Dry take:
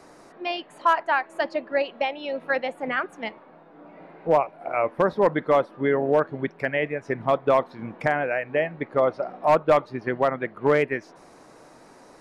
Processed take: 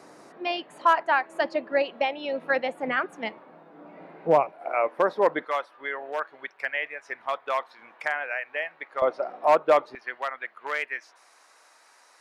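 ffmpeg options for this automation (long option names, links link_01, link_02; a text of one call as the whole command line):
ffmpeg -i in.wav -af "asetnsamples=nb_out_samples=441:pad=0,asendcmd='4.52 highpass f 410;5.45 highpass f 1100;9.02 highpass f 390;9.95 highpass f 1300',highpass=130" out.wav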